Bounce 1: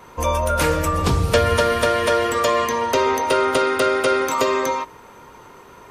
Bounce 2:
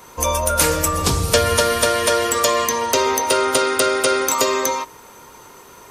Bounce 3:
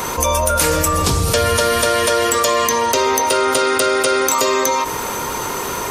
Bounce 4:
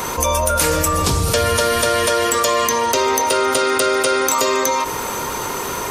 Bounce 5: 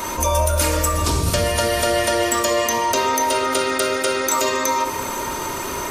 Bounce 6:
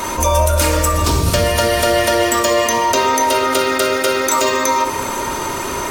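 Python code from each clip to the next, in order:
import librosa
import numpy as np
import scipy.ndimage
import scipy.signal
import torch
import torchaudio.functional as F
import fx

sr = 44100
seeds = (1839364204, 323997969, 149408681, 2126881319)

y1 = fx.bass_treble(x, sr, bass_db=-2, treble_db=12)
y2 = fx.env_flatten(y1, sr, amount_pct=70)
y2 = y2 * 10.0 ** (-2.5 / 20.0)
y3 = y2 + 10.0 ** (-21.5 / 20.0) * np.pad(y2, (int(764 * sr / 1000.0), 0))[:len(y2)]
y3 = y3 * 10.0 ** (-1.0 / 20.0)
y4 = fx.room_shoebox(y3, sr, seeds[0], volume_m3=3200.0, walls='furnished', distance_m=2.7)
y4 = y4 * 10.0 ** (-4.5 / 20.0)
y5 = np.interp(np.arange(len(y4)), np.arange(len(y4))[::2], y4[::2])
y5 = y5 * 10.0 ** (4.5 / 20.0)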